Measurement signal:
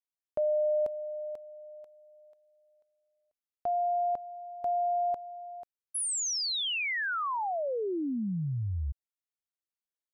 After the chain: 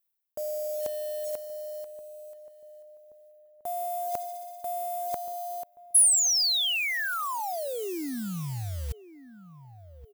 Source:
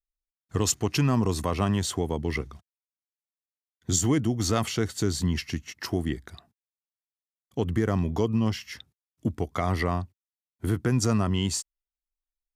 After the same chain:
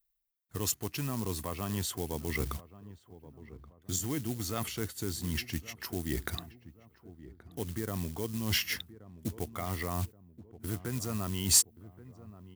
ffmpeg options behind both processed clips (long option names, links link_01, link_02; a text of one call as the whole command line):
ffmpeg -i in.wav -filter_complex "[0:a]acontrast=77,equalizer=frequency=6800:width=0.58:gain=-12.5,areverse,acompressor=threshold=-32dB:ratio=12:attack=36:release=572:knee=1:detection=rms,areverse,acrusher=bits=6:mode=log:mix=0:aa=0.000001,asplit=2[link_01][link_02];[link_02]adelay=1127,lowpass=frequency=900:poles=1,volume=-15.5dB,asplit=2[link_03][link_04];[link_04]adelay=1127,lowpass=frequency=900:poles=1,volume=0.49,asplit=2[link_05][link_06];[link_06]adelay=1127,lowpass=frequency=900:poles=1,volume=0.49,asplit=2[link_07][link_08];[link_08]adelay=1127,lowpass=frequency=900:poles=1,volume=0.49[link_09];[link_03][link_05][link_07][link_09]amix=inputs=4:normalize=0[link_10];[link_01][link_10]amix=inputs=2:normalize=0,crystalizer=i=4.5:c=0" out.wav